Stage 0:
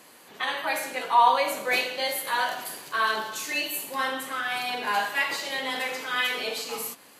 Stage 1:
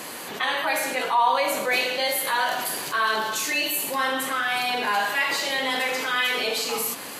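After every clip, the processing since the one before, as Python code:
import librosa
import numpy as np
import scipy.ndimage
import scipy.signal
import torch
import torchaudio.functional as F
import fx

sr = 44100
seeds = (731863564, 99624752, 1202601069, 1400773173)

y = fx.env_flatten(x, sr, amount_pct=50)
y = F.gain(torch.from_numpy(y), -2.5).numpy()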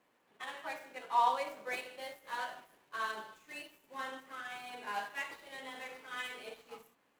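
y = scipy.signal.medfilt(x, 9)
y = fx.upward_expand(y, sr, threshold_db=-36.0, expansion=2.5)
y = F.gain(torch.from_numpy(y), -7.0).numpy()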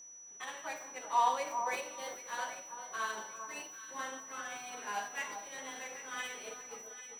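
y = x + 10.0 ** (-50.0 / 20.0) * np.sin(2.0 * np.pi * 5900.0 * np.arange(len(x)) / sr)
y = fx.echo_alternate(y, sr, ms=395, hz=1300.0, feedback_pct=55, wet_db=-7.5)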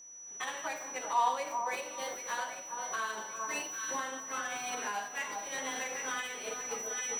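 y = fx.recorder_agc(x, sr, target_db=-27.0, rise_db_per_s=19.0, max_gain_db=30)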